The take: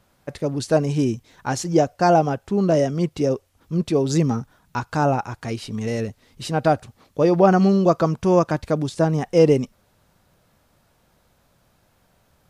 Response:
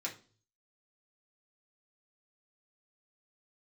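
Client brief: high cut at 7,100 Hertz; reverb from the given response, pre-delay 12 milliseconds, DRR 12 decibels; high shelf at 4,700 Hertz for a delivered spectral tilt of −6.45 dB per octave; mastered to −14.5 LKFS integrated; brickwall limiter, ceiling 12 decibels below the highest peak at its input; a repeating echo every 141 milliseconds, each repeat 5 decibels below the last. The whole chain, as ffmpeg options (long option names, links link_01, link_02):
-filter_complex "[0:a]lowpass=7100,highshelf=frequency=4700:gain=-6,alimiter=limit=-15.5dB:level=0:latency=1,aecho=1:1:141|282|423|564|705|846|987:0.562|0.315|0.176|0.0988|0.0553|0.031|0.0173,asplit=2[link_01][link_02];[1:a]atrim=start_sample=2205,adelay=12[link_03];[link_02][link_03]afir=irnorm=-1:irlink=0,volume=-13dB[link_04];[link_01][link_04]amix=inputs=2:normalize=0,volume=9.5dB"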